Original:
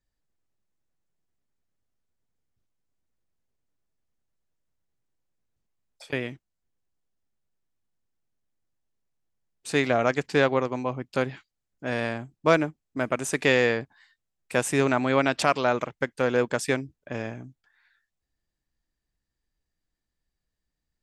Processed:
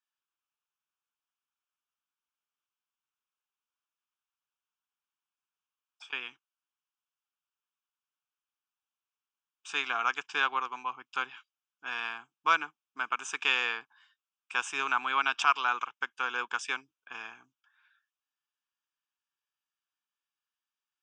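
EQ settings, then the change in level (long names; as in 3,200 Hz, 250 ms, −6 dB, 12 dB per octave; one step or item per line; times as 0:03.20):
flat-topped band-pass 2,100 Hz, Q 0.54
phaser with its sweep stopped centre 2,900 Hz, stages 8
+2.5 dB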